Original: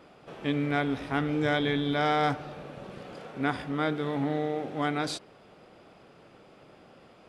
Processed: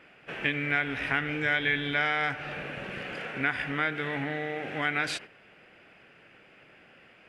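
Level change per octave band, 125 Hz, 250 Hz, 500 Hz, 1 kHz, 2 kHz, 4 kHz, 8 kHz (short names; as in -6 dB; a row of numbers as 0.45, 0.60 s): -4.5, -6.5, -5.0, -3.5, +7.5, +1.0, -0.5 dB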